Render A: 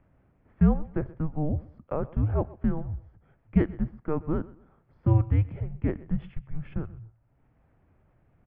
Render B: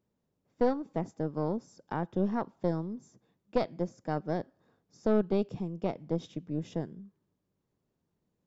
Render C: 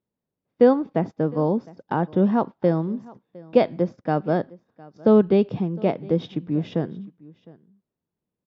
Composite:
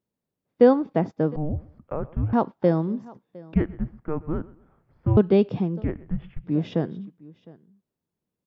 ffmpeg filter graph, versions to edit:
-filter_complex "[0:a]asplit=3[s0][s1][s2];[2:a]asplit=4[s3][s4][s5][s6];[s3]atrim=end=1.362[s7];[s0]atrim=start=1.358:end=2.332[s8];[s4]atrim=start=2.328:end=3.542[s9];[s1]atrim=start=3.538:end=5.172[s10];[s5]atrim=start=5.168:end=5.85[s11];[s2]atrim=start=5.79:end=6.49[s12];[s6]atrim=start=6.43[s13];[s7][s8]acrossfade=d=0.004:c1=hsin:c2=hsin[s14];[s14][s9]acrossfade=d=0.004:c1=hsin:c2=hsin[s15];[s15][s10]acrossfade=d=0.004:c1=hsin:c2=hsin[s16];[s16][s11]acrossfade=d=0.004:c1=hsin:c2=hsin[s17];[s17][s12]acrossfade=d=0.06:c1=tri:c2=tri[s18];[s18][s13]acrossfade=d=0.06:c1=tri:c2=tri"

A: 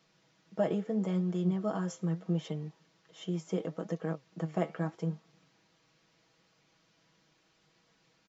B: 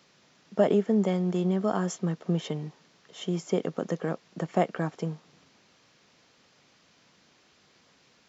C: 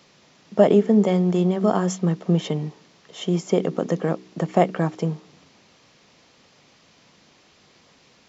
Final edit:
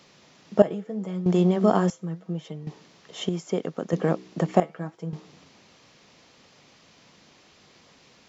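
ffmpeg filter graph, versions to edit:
-filter_complex "[0:a]asplit=3[s0][s1][s2];[2:a]asplit=5[s3][s4][s5][s6][s7];[s3]atrim=end=0.622[s8];[s0]atrim=start=0.618:end=1.262[s9];[s4]atrim=start=1.258:end=1.902[s10];[s1]atrim=start=1.898:end=2.672[s11];[s5]atrim=start=2.668:end=3.292[s12];[1:a]atrim=start=3.288:end=3.932[s13];[s6]atrim=start=3.928:end=4.602[s14];[s2]atrim=start=4.598:end=5.132[s15];[s7]atrim=start=5.128[s16];[s8][s9]acrossfade=d=0.004:c1=hsin:c2=hsin[s17];[s17][s10]acrossfade=d=0.004:c1=hsin:c2=hsin[s18];[s18][s11]acrossfade=d=0.004:c1=hsin:c2=hsin[s19];[s19][s12]acrossfade=d=0.004:c1=hsin:c2=hsin[s20];[s20][s13]acrossfade=d=0.004:c1=hsin:c2=hsin[s21];[s21][s14]acrossfade=d=0.004:c1=hsin:c2=hsin[s22];[s22][s15]acrossfade=d=0.004:c1=hsin:c2=hsin[s23];[s23][s16]acrossfade=d=0.004:c1=hsin:c2=hsin"

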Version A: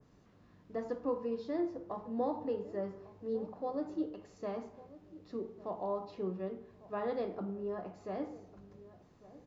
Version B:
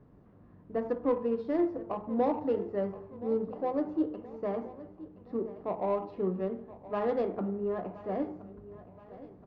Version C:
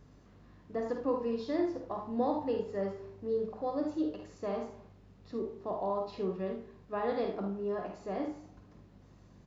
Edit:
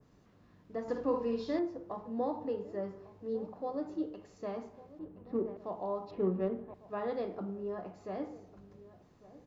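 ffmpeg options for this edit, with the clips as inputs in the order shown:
-filter_complex "[1:a]asplit=2[s0][s1];[0:a]asplit=4[s2][s3][s4][s5];[s2]atrim=end=0.882[s6];[2:a]atrim=start=0.878:end=1.592[s7];[s3]atrim=start=1.588:end=4.992[s8];[s0]atrim=start=4.988:end=5.572[s9];[s4]atrim=start=5.568:end=6.112[s10];[s1]atrim=start=6.108:end=6.742[s11];[s5]atrim=start=6.738[s12];[s6][s7]acrossfade=d=0.004:c1=hsin:c2=hsin[s13];[s13][s8]acrossfade=d=0.004:c1=hsin:c2=hsin[s14];[s14][s9]acrossfade=d=0.004:c1=hsin:c2=hsin[s15];[s15][s10]acrossfade=d=0.004:c1=hsin:c2=hsin[s16];[s16][s11]acrossfade=d=0.004:c1=hsin:c2=hsin[s17];[s17][s12]acrossfade=d=0.004:c1=hsin:c2=hsin"

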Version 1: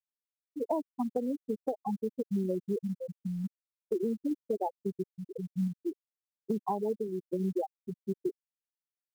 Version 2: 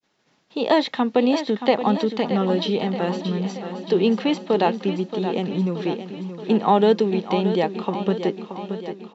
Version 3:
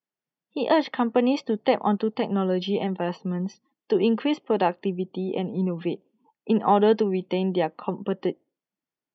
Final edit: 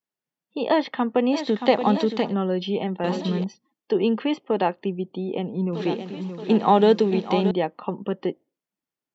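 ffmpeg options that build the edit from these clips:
-filter_complex "[1:a]asplit=3[s0][s1][s2];[2:a]asplit=4[s3][s4][s5][s6];[s3]atrim=end=1.44[s7];[s0]atrim=start=1.28:end=2.35[s8];[s4]atrim=start=2.19:end=3.042[s9];[s1]atrim=start=3.038:end=3.442[s10];[s5]atrim=start=3.438:end=5.732[s11];[s2]atrim=start=5.728:end=7.512[s12];[s6]atrim=start=7.508[s13];[s7][s8]acrossfade=d=0.16:c1=tri:c2=tri[s14];[s14][s9]acrossfade=d=0.16:c1=tri:c2=tri[s15];[s15][s10]acrossfade=d=0.004:c1=hsin:c2=hsin[s16];[s16][s11]acrossfade=d=0.004:c1=hsin:c2=hsin[s17];[s17][s12]acrossfade=d=0.004:c1=hsin:c2=hsin[s18];[s18][s13]acrossfade=d=0.004:c1=hsin:c2=hsin"

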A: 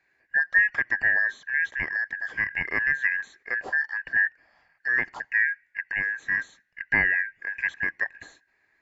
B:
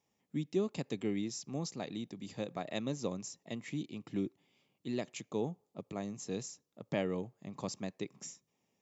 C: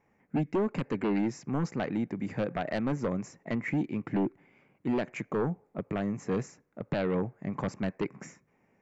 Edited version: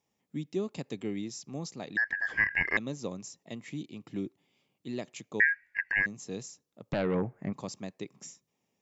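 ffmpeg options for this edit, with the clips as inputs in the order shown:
-filter_complex "[0:a]asplit=2[s0][s1];[1:a]asplit=4[s2][s3][s4][s5];[s2]atrim=end=1.972[s6];[s0]atrim=start=1.968:end=2.772[s7];[s3]atrim=start=2.768:end=5.402[s8];[s1]atrim=start=5.398:end=6.062[s9];[s4]atrim=start=6.058:end=6.932[s10];[2:a]atrim=start=6.928:end=7.532[s11];[s5]atrim=start=7.528[s12];[s6][s7]acrossfade=d=0.004:c1=hsin:c2=hsin[s13];[s13][s8]acrossfade=d=0.004:c1=hsin:c2=hsin[s14];[s14][s9]acrossfade=d=0.004:c1=hsin:c2=hsin[s15];[s15][s10]acrossfade=d=0.004:c1=hsin:c2=hsin[s16];[s16][s11]acrossfade=d=0.004:c1=hsin:c2=hsin[s17];[s17][s12]acrossfade=d=0.004:c1=hsin:c2=hsin"

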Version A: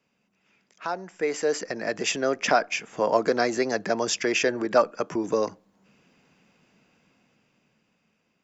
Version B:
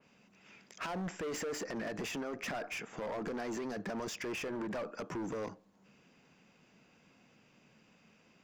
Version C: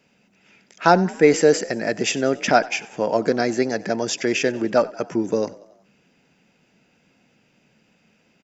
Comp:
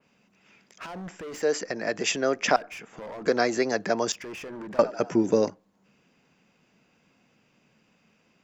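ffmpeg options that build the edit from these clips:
-filter_complex "[0:a]asplit=2[s0][s1];[1:a]asplit=4[s2][s3][s4][s5];[s2]atrim=end=1.422[s6];[s0]atrim=start=1.418:end=2.562[s7];[s3]atrim=start=2.558:end=3.262[s8];[s1]atrim=start=3.258:end=4.122[s9];[s4]atrim=start=4.118:end=4.792[s10];[2:a]atrim=start=4.788:end=5.502[s11];[s5]atrim=start=5.498[s12];[s6][s7]acrossfade=d=0.004:c1=hsin:c2=hsin[s13];[s13][s8]acrossfade=d=0.004:c1=hsin:c2=hsin[s14];[s14][s9]acrossfade=d=0.004:c1=hsin:c2=hsin[s15];[s15][s10]acrossfade=d=0.004:c1=hsin:c2=hsin[s16];[s16][s11]acrossfade=d=0.004:c1=hsin:c2=hsin[s17];[s17][s12]acrossfade=d=0.004:c1=hsin:c2=hsin"

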